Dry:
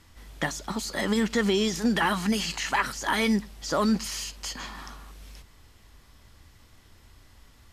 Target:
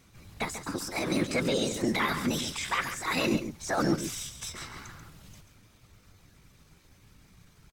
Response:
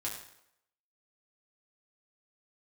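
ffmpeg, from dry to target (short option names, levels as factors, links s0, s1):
-af "afftfilt=real='hypot(re,im)*cos(2*PI*random(0))':imag='hypot(re,im)*sin(2*PI*random(1))':win_size=512:overlap=0.75,asetrate=52444,aresample=44100,atempo=0.840896,aecho=1:1:137:0.316,volume=1.33"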